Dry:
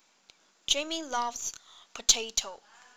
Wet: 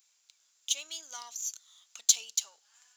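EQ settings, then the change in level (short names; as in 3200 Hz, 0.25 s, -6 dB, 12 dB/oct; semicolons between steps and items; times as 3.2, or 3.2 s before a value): differentiator; bell 8200 Hz +3 dB 0.45 oct; 0.0 dB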